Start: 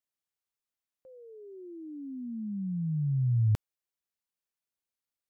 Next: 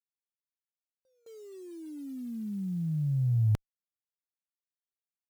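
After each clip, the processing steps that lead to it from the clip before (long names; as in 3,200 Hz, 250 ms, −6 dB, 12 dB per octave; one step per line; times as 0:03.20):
bit-depth reduction 10 bits, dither none
noise gate with hold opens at −45 dBFS
harmonic generator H 3 −45 dB, 4 −44 dB, 8 −43 dB, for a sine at −19.5 dBFS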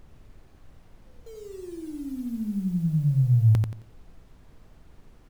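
background noise brown −55 dBFS
repeating echo 89 ms, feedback 29%, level −4 dB
level +5 dB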